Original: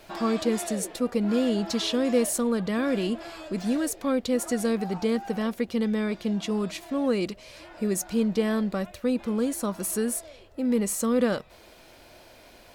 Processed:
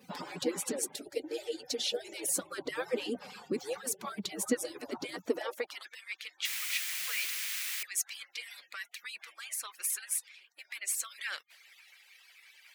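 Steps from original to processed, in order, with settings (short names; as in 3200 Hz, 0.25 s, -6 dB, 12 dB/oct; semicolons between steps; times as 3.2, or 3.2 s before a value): median-filter separation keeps percussive; 6.45–7.83 requantised 6-bit, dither triangular; high-pass sweep 190 Hz -> 2100 Hz, 5.2–5.97; 0.95–2.28 fixed phaser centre 460 Hz, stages 4; gain -1.5 dB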